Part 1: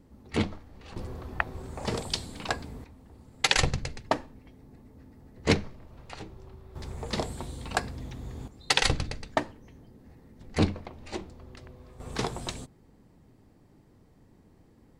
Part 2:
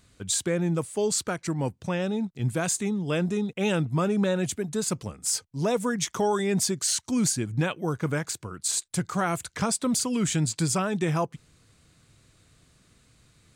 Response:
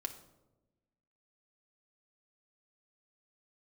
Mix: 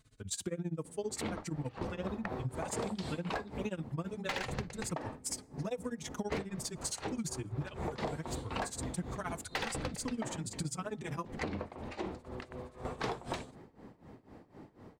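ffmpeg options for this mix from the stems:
-filter_complex "[0:a]tremolo=f=4:d=0.87,asplit=2[a][b];[b]highpass=f=720:p=1,volume=31dB,asoftclip=type=tanh:threshold=-2.5dB[c];[a][c]amix=inputs=2:normalize=0,lowpass=f=1.1k:p=1,volume=-6dB,lowshelf=f=110:g=7,adelay=850,volume=-8.5dB[d];[1:a]lowshelf=f=440:g=4,tremolo=f=15:d=0.96,asplit=2[e][f];[f]adelay=4.1,afreqshift=-1.2[g];[e][g]amix=inputs=2:normalize=1,volume=-3.5dB,asplit=2[h][i];[i]volume=-16.5dB[j];[2:a]atrim=start_sample=2205[k];[j][k]afir=irnorm=-1:irlink=0[l];[d][h][l]amix=inputs=3:normalize=0,acompressor=threshold=-34dB:ratio=6"

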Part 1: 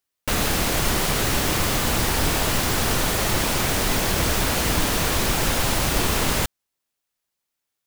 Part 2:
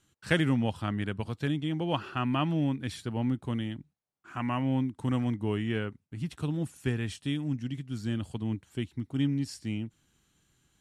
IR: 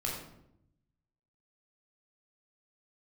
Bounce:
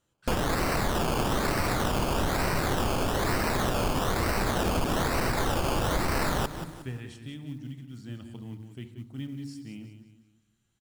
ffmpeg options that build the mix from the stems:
-filter_complex "[0:a]acrusher=samples=18:mix=1:aa=0.000001:lfo=1:lforange=10.8:lforate=1.1,volume=0.5dB,asplit=2[a][b];[b]volume=-16.5dB[c];[1:a]volume=-10.5dB,asplit=3[d][e][f];[e]volume=-10.5dB[g];[f]volume=-8dB[h];[2:a]atrim=start_sample=2205[i];[g][i]afir=irnorm=-1:irlink=0[j];[c][h]amix=inputs=2:normalize=0,aecho=0:1:181|362|543|724|905:1|0.37|0.137|0.0507|0.0187[k];[a][d][j][k]amix=inputs=4:normalize=0,acrusher=bits=8:mode=log:mix=0:aa=0.000001,acompressor=threshold=-24dB:ratio=4"

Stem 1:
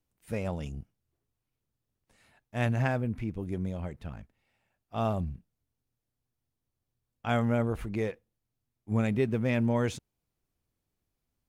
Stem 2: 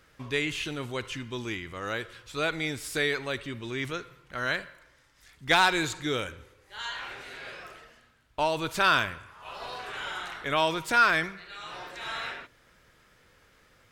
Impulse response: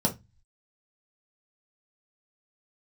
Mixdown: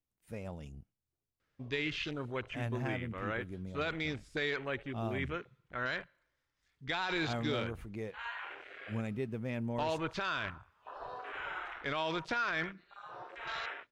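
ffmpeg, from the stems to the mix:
-filter_complex "[0:a]volume=-10dB[a];[1:a]afwtdn=0.0112,lowpass=6.7k,adelay=1400,volume=-4dB[b];[a][b]amix=inputs=2:normalize=0,alimiter=level_in=0.5dB:limit=-24dB:level=0:latency=1:release=13,volume=-0.5dB"

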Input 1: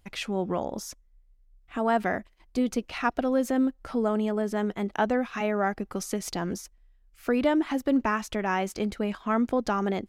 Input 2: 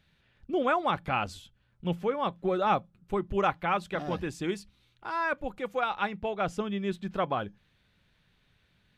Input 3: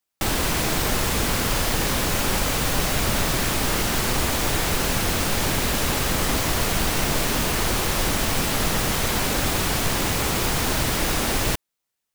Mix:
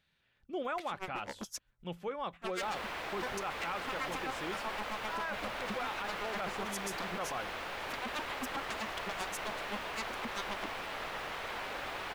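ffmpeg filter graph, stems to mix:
-filter_complex "[0:a]aeval=exprs='0.0376*(abs(mod(val(0)/0.0376+3,4)-2)-1)':c=same,aeval=exprs='val(0)*pow(10,-31*(0.5-0.5*cos(2*PI*7.7*n/s))/20)':c=same,adelay=650,volume=3dB[a];[1:a]volume=-5.5dB[b];[2:a]acrossover=split=460 3400:gain=0.126 1 0.0891[c][d][e];[c][d][e]amix=inputs=3:normalize=0,adelay=2400,volume=-11.5dB[f];[a][b]amix=inputs=2:normalize=0,lowshelf=f=340:g=-9,alimiter=limit=-23.5dB:level=0:latency=1:release=408,volume=0dB[g];[f][g]amix=inputs=2:normalize=0,alimiter=level_in=4dB:limit=-24dB:level=0:latency=1:release=18,volume=-4dB"

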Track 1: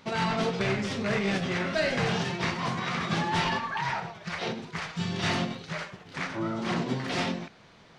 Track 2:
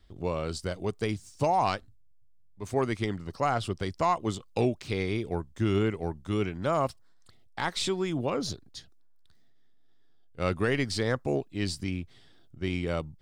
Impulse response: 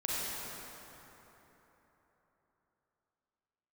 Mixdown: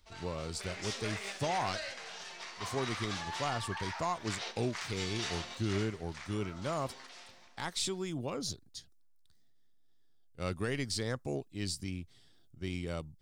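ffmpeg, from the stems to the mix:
-filter_complex "[0:a]highpass=690,acompressor=threshold=-34dB:ratio=6,volume=-5.5dB,afade=t=in:st=0.57:d=0.25:silence=0.334965,afade=t=out:st=5.56:d=0.71:silence=0.421697,asplit=2[a][b];[b]volume=-20dB[c];[1:a]volume=-9dB,asplit=2[d][e];[e]apad=whole_len=351987[f];[a][f]sidechaingate=range=-7dB:threshold=-57dB:ratio=16:detection=peak[g];[2:a]atrim=start_sample=2205[h];[c][h]afir=irnorm=-1:irlink=0[i];[g][d][i]amix=inputs=3:normalize=0,bass=f=250:g=3,treble=f=4k:g=10"

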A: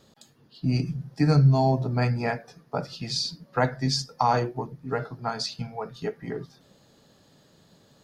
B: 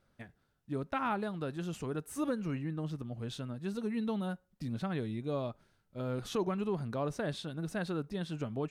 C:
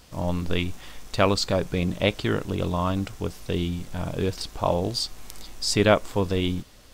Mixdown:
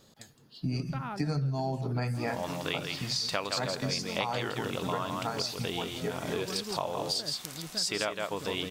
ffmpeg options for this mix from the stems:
-filter_complex "[0:a]highshelf=f=5k:g=7,volume=-2.5dB,asplit=2[a][b];[b]volume=-18.5dB[c];[1:a]volume=-5.5dB[d];[2:a]highpass=f=960:p=1,adelay=2150,volume=2dB,asplit=2[e][f];[f]volume=-6dB[g];[c][g]amix=inputs=2:normalize=0,aecho=0:1:164:1[h];[a][d][e][h]amix=inputs=4:normalize=0,acompressor=threshold=-28dB:ratio=6"

